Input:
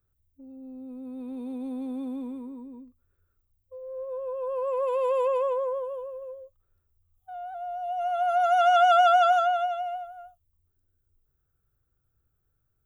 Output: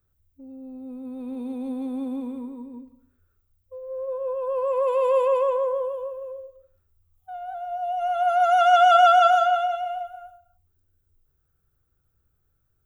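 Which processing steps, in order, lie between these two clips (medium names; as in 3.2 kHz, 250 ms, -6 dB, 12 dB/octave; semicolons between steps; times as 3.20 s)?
gated-style reverb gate 330 ms falling, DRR 10 dB; trim +3.5 dB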